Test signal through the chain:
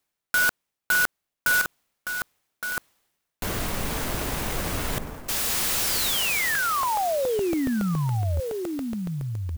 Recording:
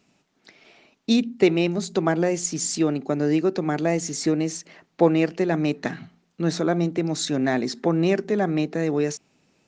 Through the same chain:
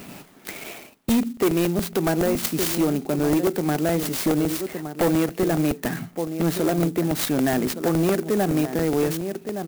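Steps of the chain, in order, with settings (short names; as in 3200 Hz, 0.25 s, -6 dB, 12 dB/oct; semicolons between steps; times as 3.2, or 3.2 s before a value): in parallel at -1.5 dB: compressor, threshold -31 dBFS; on the sum: outdoor echo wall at 200 m, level -11 dB; overloaded stage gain 15.5 dB; reverse; upward compressor, threshold -23 dBFS; reverse; crackling interface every 0.14 s, samples 64, repeat, from 0.95; clock jitter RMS 0.053 ms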